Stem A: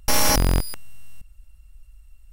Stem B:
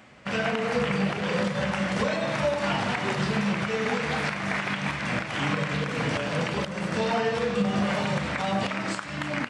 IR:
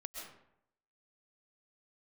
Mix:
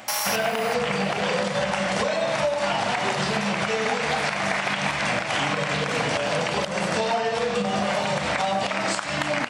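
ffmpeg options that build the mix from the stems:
-filter_complex "[0:a]highpass=1.2k,volume=-3dB[a];[1:a]highshelf=f=2.3k:g=12,volume=2.5dB[b];[a][b]amix=inputs=2:normalize=0,equalizer=f=700:w=1.2:g=10,acompressor=threshold=-21dB:ratio=6"

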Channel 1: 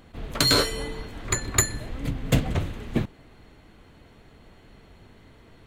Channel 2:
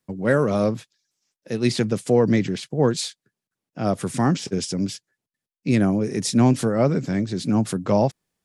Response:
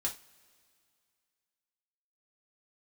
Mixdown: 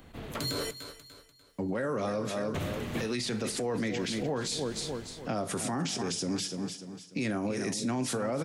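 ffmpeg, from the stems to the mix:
-filter_complex "[0:a]highshelf=f=9.6k:g=7.5,dynaudnorm=f=120:g=17:m=11dB,volume=-1.5dB,asplit=3[a][b][c];[a]atrim=end=0.71,asetpts=PTS-STARTPTS,afade=t=out:st=0.706:d=0.004:c=hsin[d];[b]atrim=start=0.71:end=2.54,asetpts=PTS-STARTPTS,volume=0[e];[c]atrim=start=2.54,asetpts=PTS-STARTPTS,afade=t=in:d=0.004:c=hsin[f];[d][e][f]concat=n=3:v=0:a=1,asplit=2[g][h];[h]volume=-23.5dB[i];[1:a]highpass=f=180:p=1,adelay=1500,volume=2dB,asplit=3[j][k][l];[k]volume=-4.5dB[m];[l]volume=-10.5dB[n];[2:a]atrim=start_sample=2205[o];[m][o]afir=irnorm=-1:irlink=0[p];[i][n]amix=inputs=2:normalize=0,aecho=0:1:295|590|885|1180|1475:1|0.36|0.13|0.0467|0.0168[q];[g][j][p][q]amix=inputs=4:normalize=0,acrossover=split=92|690[r][s][t];[r]acompressor=threshold=-52dB:ratio=4[u];[s]acompressor=threshold=-27dB:ratio=4[v];[t]acompressor=threshold=-30dB:ratio=4[w];[u][v][w]amix=inputs=3:normalize=0,alimiter=limit=-24dB:level=0:latency=1:release=36"

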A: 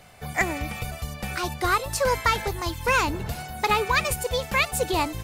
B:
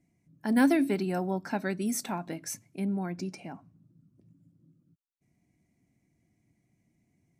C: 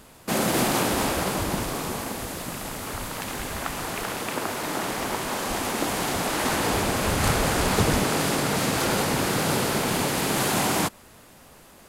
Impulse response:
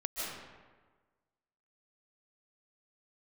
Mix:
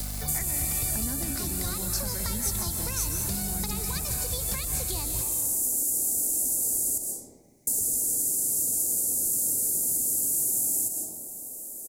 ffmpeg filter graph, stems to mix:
-filter_complex "[0:a]acrusher=bits=9:dc=4:mix=0:aa=0.000001,aeval=exprs='val(0)+0.0141*(sin(2*PI*50*n/s)+sin(2*PI*2*50*n/s)/2+sin(2*PI*3*50*n/s)/3+sin(2*PI*4*50*n/s)/4+sin(2*PI*5*50*n/s)/5)':c=same,acrossover=split=250|2800|6100[a][b][c][d];[a]acompressor=threshold=-38dB:ratio=4[e];[b]acompressor=threshold=-37dB:ratio=4[f];[c]acompressor=threshold=-42dB:ratio=4[g];[d]acompressor=threshold=-58dB:ratio=4[h];[e][f][g][h]amix=inputs=4:normalize=0,volume=3dB,asplit=2[i][j];[j]volume=-7dB[k];[1:a]acompressor=threshold=-33dB:ratio=3,adelay=500,volume=1dB,asplit=2[l][m];[m]volume=-4dB[n];[2:a]firequalizer=gain_entry='entry(180,0);entry(260,11);entry(730,3);entry(1200,-19);entry(1800,-27);entry(7300,12)':delay=0.05:min_phase=1,acrossover=split=96|1200|4200[o][p][q][r];[o]acompressor=threshold=-42dB:ratio=4[s];[p]acompressor=threshold=-31dB:ratio=4[t];[q]acompressor=threshold=-53dB:ratio=4[u];[r]acompressor=threshold=-23dB:ratio=4[v];[s][t][u][v]amix=inputs=4:normalize=0,volume=-14.5dB,asplit=3[w][x][y];[w]atrim=end=6.98,asetpts=PTS-STARTPTS,afade=t=out:st=6.976:d=0.004:c=hsin[z];[x]atrim=start=6.98:end=7.67,asetpts=PTS-STARTPTS,volume=0[aa];[y]atrim=start=7.67,asetpts=PTS-STARTPTS,afade=t=in:d=0.004:c=hsin[ab];[z][aa][ab]concat=n=3:v=0:a=1,asplit=2[ac][ad];[ad]volume=-3dB[ae];[3:a]atrim=start_sample=2205[af];[k][n][ae]amix=inputs=3:normalize=0[ag];[ag][af]afir=irnorm=-1:irlink=0[ah];[i][l][ac][ah]amix=inputs=4:normalize=0,acrossover=split=150[ai][aj];[aj]acompressor=threshold=-41dB:ratio=3[ak];[ai][ak]amix=inputs=2:normalize=0,aexciter=amount=4.5:drive=6.4:freq=4.1k"

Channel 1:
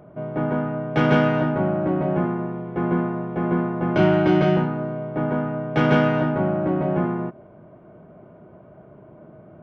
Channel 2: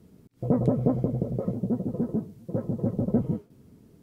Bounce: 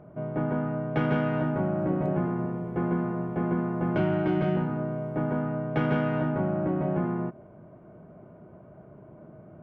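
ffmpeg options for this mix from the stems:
-filter_complex "[0:a]bass=f=250:g=3,treble=f=4k:g=-12,acompressor=threshold=-20dB:ratio=2.5,volume=-4dB[a];[1:a]acompressor=threshold=-42dB:ratio=1.5,adelay=1400,volume=-8dB[b];[a][b]amix=inputs=2:normalize=0"

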